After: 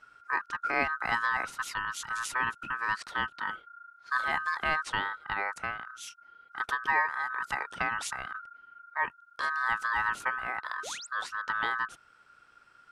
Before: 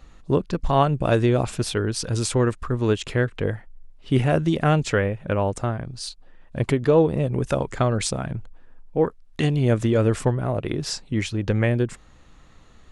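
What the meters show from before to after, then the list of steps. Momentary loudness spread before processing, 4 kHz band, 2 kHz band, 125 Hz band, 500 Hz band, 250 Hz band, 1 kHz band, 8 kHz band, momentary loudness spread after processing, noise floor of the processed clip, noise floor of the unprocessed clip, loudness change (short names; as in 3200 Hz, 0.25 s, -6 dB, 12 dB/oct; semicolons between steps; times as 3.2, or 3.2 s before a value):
9 LU, -7.5 dB, +4.0 dB, -31.5 dB, -23.0 dB, -25.5 dB, -1.5 dB, -9.5 dB, 11 LU, -61 dBFS, -50 dBFS, -8.5 dB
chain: ring modulator 1400 Hz; painted sound rise, 10.83–11.07, 370–9100 Hz -35 dBFS; gain -7.5 dB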